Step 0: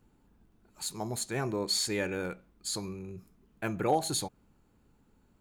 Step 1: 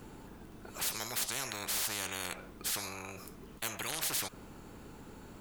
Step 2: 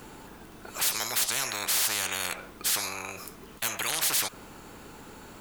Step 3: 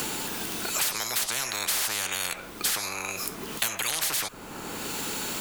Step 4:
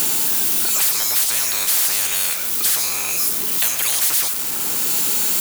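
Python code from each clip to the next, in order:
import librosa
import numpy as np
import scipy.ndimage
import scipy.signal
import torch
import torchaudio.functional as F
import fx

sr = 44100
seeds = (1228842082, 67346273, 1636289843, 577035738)

y1 = fx.spectral_comp(x, sr, ratio=10.0)
y1 = y1 * librosa.db_to_amplitude(-3.0)
y2 = fx.low_shelf(y1, sr, hz=440.0, db=-9.0)
y2 = np.clip(y2, -10.0 ** (-28.5 / 20.0), 10.0 ** (-28.5 / 20.0))
y2 = y2 * librosa.db_to_amplitude(9.0)
y3 = fx.band_squash(y2, sr, depth_pct=100)
y4 = y3 + 0.5 * 10.0 ** (-17.0 / 20.0) * np.diff(np.sign(y3), prepend=np.sign(y3[:1]))
y4 = y4 * librosa.db_to_amplitude(2.0)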